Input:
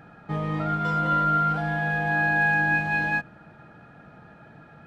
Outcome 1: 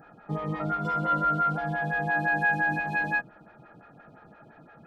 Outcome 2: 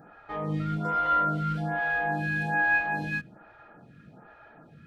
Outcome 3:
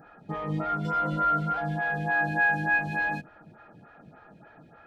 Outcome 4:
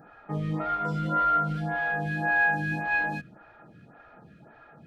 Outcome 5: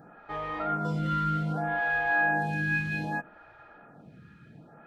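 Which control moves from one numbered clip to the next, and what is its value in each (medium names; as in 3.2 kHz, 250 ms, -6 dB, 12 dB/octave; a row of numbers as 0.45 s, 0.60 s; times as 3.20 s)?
lamp-driven phase shifter, rate: 5.8 Hz, 1.2 Hz, 3.4 Hz, 1.8 Hz, 0.64 Hz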